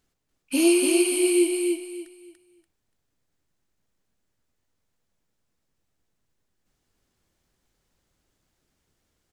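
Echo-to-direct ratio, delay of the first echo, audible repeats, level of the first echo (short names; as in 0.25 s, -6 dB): -3.5 dB, 0.289 s, 3, -4.0 dB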